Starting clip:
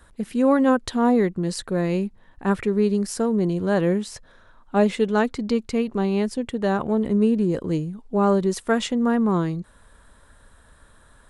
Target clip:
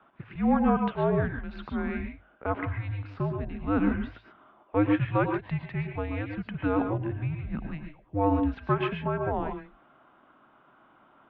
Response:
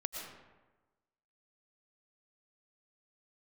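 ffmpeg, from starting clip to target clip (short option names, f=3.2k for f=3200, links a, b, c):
-filter_complex "[0:a]bandreject=f=60:t=h:w=6,bandreject=f=120:t=h:w=6,bandreject=f=180:t=h:w=6,bandreject=f=240:t=h:w=6,bandreject=f=300:t=h:w=6,bandreject=f=360:t=h:w=6,bandreject=f=420:t=h:w=6[a];[1:a]atrim=start_sample=2205,afade=t=out:st=0.2:d=0.01,atrim=end_sample=9261[b];[a][b]afir=irnorm=-1:irlink=0,highpass=f=460:t=q:w=0.5412,highpass=f=460:t=q:w=1.307,lowpass=f=3k:t=q:w=0.5176,lowpass=f=3k:t=q:w=0.7071,lowpass=f=3k:t=q:w=1.932,afreqshift=-310"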